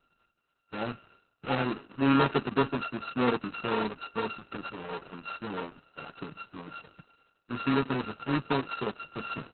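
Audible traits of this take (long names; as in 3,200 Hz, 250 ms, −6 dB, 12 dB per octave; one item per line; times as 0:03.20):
a buzz of ramps at a fixed pitch in blocks of 32 samples
Opus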